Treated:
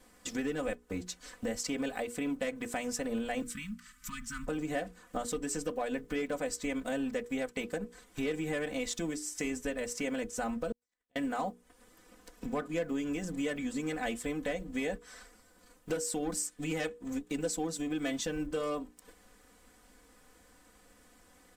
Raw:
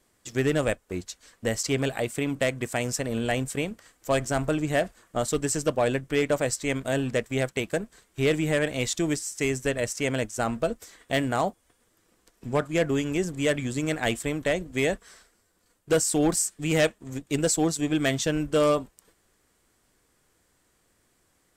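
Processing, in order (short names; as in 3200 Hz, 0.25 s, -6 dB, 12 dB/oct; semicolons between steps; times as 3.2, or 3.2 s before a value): block floating point 7-bit; high shelf 2900 Hz -4.5 dB; limiter -19 dBFS, peak gain reduction 3.5 dB; comb 4 ms, depth 91%; compressor 2.5:1, threshold -44 dBFS, peak gain reduction 17.5 dB; 3.42–4.47 elliptic band-stop 230–1200 Hz, stop band 40 dB; notches 60/120/180/240/300/360/420/480 Hz; 10.72–11.16 flipped gate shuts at -47 dBFS, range -42 dB; gain +5.5 dB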